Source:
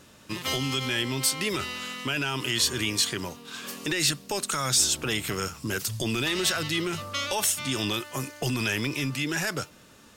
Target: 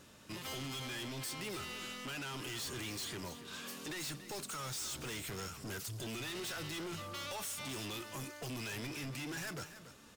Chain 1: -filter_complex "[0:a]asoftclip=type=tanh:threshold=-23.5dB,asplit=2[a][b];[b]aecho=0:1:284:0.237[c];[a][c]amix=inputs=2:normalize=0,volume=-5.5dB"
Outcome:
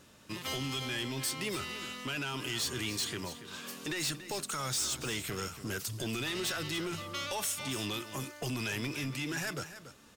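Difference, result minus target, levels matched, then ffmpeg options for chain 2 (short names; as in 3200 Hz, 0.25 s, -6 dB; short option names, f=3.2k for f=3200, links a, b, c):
soft clip: distortion -7 dB
-filter_complex "[0:a]asoftclip=type=tanh:threshold=-34.5dB,asplit=2[a][b];[b]aecho=0:1:284:0.237[c];[a][c]amix=inputs=2:normalize=0,volume=-5.5dB"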